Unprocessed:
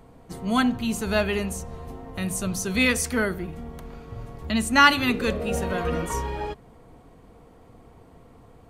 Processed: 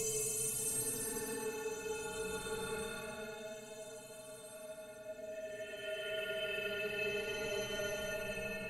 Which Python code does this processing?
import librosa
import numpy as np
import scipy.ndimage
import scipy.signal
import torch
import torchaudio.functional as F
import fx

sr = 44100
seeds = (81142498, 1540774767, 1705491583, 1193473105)

p1 = fx.stiff_resonator(x, sr, f0_hz=130.0, decay_s=0.52, stiffness=0.03)
p2 = fx.over_compress(p1, sr, threshold_db=-44.0, ratio=-1.0)
p3 = p2 + fx.echo_split(p2, sr, split_hz=750.0, low_ms=249, high_ms=108, feedback_pct=52, wet_db=-14, dry=0)
p4 = fx.paulstretch(p3, sr, seeds[0], factor=17.0, window_s=0.1, from_s=0.95)
p5 = fx.peak_eq(p4, sr, hz=120.0, db=-9.5, octaves=2.0)
y = F.gain(torch.from_numpy(p5), 1.5).numpy()